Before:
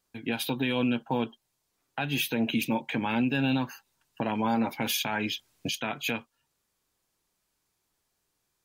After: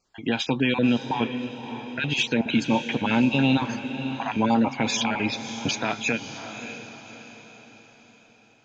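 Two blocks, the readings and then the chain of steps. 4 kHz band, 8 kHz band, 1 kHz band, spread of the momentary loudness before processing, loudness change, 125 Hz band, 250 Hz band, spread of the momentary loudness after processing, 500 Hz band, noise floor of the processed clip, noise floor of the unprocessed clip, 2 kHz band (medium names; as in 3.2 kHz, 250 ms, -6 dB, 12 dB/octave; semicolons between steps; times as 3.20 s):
+4.5 dB, +4.5 dB, +5.0 dB, 8 LU, +4.5 dB, +5.5 dB, +5.5 dB, 14 LU, +5.0 dB, -56 dBFS, -79 dBFS, +5.5 dB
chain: random holes in the spectrogram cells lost 23%; echo that smears into a reverb 594 ms, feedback 45%, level -10 dB; trim +6 dB; Vorbis 96 kbps 16 kHz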